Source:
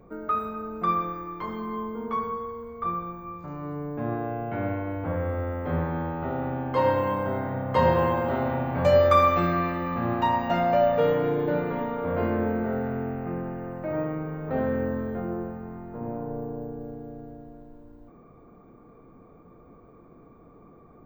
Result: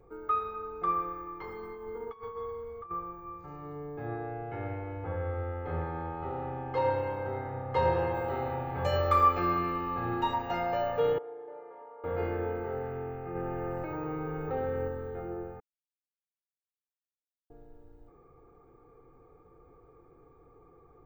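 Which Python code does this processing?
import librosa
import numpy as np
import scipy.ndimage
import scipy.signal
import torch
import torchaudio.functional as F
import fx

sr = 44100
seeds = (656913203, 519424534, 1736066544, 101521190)

y = fx.over_compress(x, sr, threshold_db=-33.0, ratio=-0.5, at=(1.63, 2.91))
y = fx.high_shelf(y, sr, hz=11000.0, db=-11.5, at=(4.06, 8.14))
y = fx.reverb_throw(y, sr, start_s=8.89, length_s=1.38, rt60_s=0.96, drr_db=4.0)
y = fx.ladder_bandpass(y, sr, hz=780.0, resonance_pct=25, at=(11.18, 12.04))
y = fx.env_flatten(y, sr, amount_pct=70, at=(13.35, 14.88))
y = fx.edit(y, sr, fx.silence(start_s=15.6, length_s=1.9), tone=tone)
y = fx.peak_eq(y, sr, hz=290.0, db=-4.0, octaves=0.5)
y = y + 0.81 * np.pad(y, (int(2.4 * sr / 1000.0), 0))[:len(y)]
y = y * 10.0 ** (-7.5 / 20.0)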